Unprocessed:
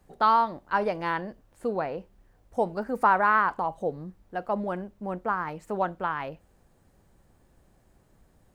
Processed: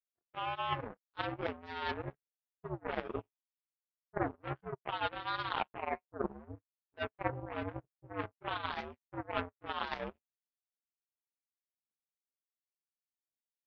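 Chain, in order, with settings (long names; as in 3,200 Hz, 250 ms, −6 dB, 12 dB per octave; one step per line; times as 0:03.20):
multi-voice chorus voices 6, 0.28 Hz, delay 16 ms, depth 2.2 ms
phase-vocoder stretch with locked phases 1.6×
single-sideband voice off tune −80 Hz 180–2,600 Hz
reversed playback
downward compressor 10 to 1, threshold −40 dBFS, peak gain reduction 21 dB
reversed playback
power curve on the samples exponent 3
level +16 dB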